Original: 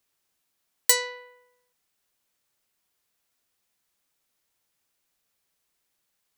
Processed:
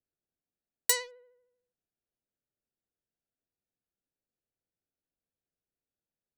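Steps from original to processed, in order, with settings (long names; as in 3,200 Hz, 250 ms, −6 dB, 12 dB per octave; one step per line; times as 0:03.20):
adaptive Wiener filter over 41 samples
pitch vibrato 13 Hz 35 cents
level −6 dB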